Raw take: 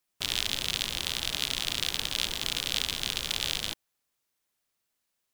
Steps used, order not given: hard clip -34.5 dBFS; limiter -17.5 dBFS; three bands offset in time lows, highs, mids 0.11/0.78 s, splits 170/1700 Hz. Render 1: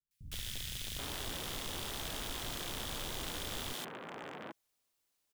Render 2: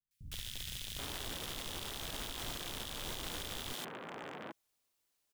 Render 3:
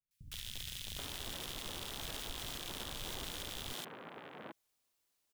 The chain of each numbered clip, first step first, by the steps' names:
three bands offset in time > hard clip > limiter; three bands offset in time > limiter > hard clip; limiter > three bands offset in time > hard clip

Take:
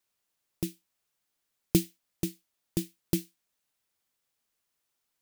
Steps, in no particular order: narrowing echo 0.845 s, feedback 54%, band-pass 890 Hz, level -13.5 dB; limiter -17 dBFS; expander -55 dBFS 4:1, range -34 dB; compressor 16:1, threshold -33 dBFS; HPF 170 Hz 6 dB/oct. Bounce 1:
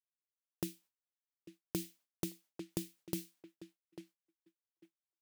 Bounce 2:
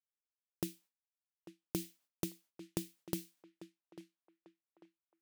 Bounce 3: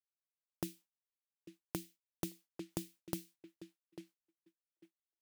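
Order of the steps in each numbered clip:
narrowing echo > limiter > expander > HPF > compressor; HPF > expander > limiter > narrowing echo > compressor; narrowing echo > compressor > limiter > expander > HPF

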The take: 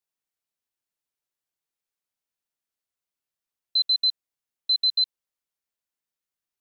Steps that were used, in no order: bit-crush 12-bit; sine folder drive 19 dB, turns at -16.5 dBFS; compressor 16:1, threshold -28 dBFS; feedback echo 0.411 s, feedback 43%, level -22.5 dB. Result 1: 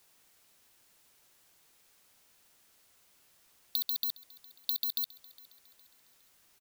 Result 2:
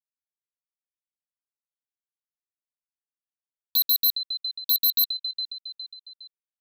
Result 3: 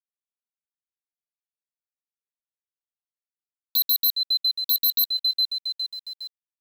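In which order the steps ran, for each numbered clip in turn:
sine folder > compressor > feedback echo > bit-crush; compressor > bit-crush > feedback echo > sine folder; feedback echo > compressor > bit-crush > sine folder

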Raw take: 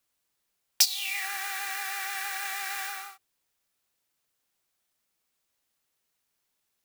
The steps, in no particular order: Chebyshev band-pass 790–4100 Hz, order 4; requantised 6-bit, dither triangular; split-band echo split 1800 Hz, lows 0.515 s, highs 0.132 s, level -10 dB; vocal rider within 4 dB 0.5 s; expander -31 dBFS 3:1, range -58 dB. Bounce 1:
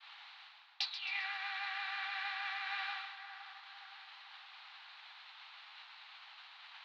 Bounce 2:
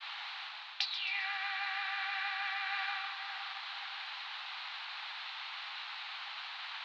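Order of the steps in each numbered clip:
requantised > vocal rider > Chebyshev band-pass > expander > split-band echo; split-band echo > requantised > expander > vocal rider > Chebyshev band-pass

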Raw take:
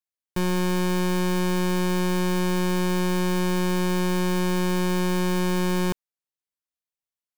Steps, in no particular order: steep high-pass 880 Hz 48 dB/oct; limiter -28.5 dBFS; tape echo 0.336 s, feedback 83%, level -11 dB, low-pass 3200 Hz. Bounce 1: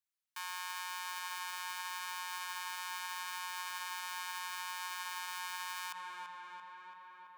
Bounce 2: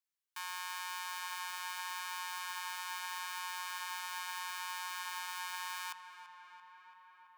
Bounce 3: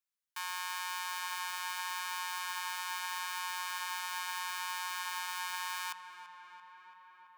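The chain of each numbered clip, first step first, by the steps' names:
steep high-pass > tape echo > limiter; steep high-pass > limiter > tape echo; limiter > steep high-pass > tape echo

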